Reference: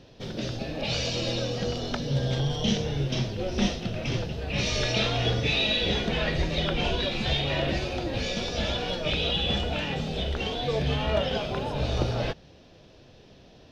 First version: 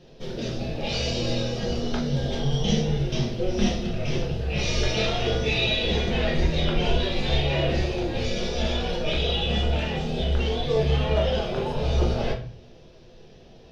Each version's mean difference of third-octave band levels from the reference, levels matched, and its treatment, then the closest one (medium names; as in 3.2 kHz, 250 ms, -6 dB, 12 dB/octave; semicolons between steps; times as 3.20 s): 2.5 dB: simulated room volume 37 m³, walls mixed, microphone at 0.82 m; trim -4 dB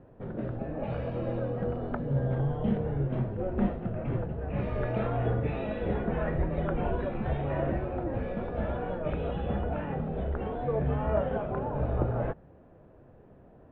8.5 dB: low-pass 1.5 kHz 24 dB/octave; trim -1.5 dB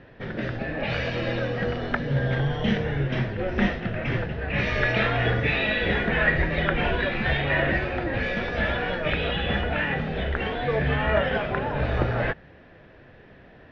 5.5 dB: resonant low-pass 1.8 kHz, resonance Q 3.9; trim +2 dB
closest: first